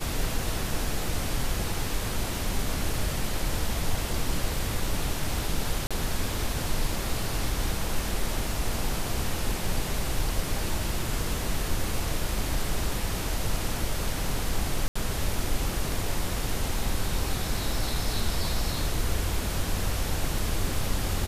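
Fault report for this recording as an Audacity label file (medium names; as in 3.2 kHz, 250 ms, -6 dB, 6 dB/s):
5.870000	5.910000	dropout 36 ms
14.880000	14.960000	dropout 75 ms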